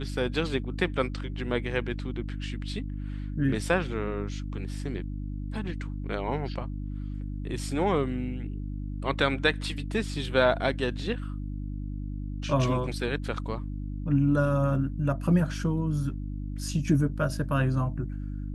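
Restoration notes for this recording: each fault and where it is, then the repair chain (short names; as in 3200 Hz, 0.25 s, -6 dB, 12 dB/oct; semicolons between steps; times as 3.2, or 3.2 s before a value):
hum 50 Hz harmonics 6 -34 dBFS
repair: de-hum 50 Hz, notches 6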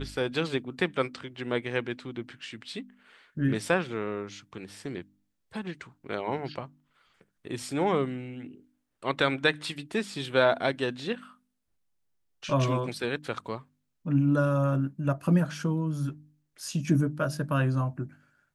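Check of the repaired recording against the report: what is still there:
none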